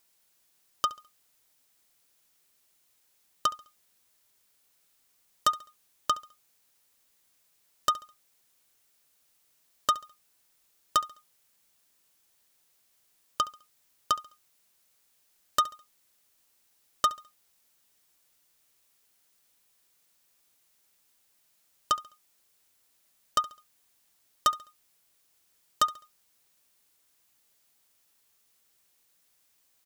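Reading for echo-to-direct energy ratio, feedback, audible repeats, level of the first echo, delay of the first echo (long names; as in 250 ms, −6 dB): −18.5 dB, 36%, 2, −19.0 dB, 69 ms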